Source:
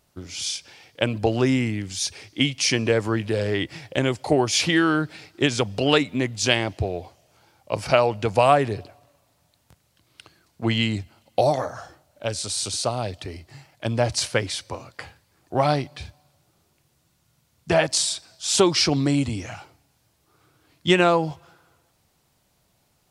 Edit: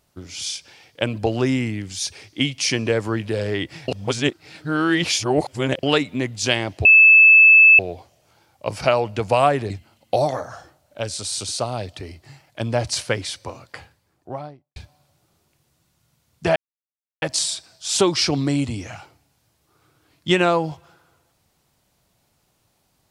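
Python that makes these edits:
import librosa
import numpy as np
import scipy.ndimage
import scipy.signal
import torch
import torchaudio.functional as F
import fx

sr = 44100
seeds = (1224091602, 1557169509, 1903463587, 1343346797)

y = fx.studio_fade_out(x, sr, start_s=14.95, length_s=1.06)
y = fx.edit(y, sr, fx.reverse_span(start_s=3.88, length_s=1.95),
    fx.insert_tone(at_s=6.85, length_s=0.94, hz=2620.0, db=-6.5),
    fx.cut(start_s=8.76, length_s=2.19),
    fx.insert_silence(at_s=17.81, length_s=0.66), tone=tone)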